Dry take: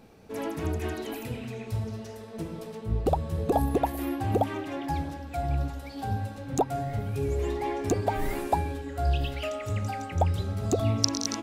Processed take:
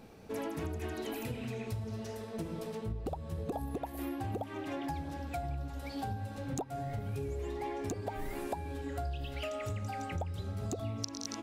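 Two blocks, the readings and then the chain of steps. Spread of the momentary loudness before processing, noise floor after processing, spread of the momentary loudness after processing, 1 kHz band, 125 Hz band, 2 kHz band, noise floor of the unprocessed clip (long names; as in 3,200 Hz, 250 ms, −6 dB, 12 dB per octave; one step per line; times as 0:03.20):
10 LU, −45 dBFS, 2 LU, −10.0 dB, −9.0 dB, −6.5 dB, −42 dBFS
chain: downward compressor 10 to 1, threshold −34 dBFS, peak gain reduction 18 dB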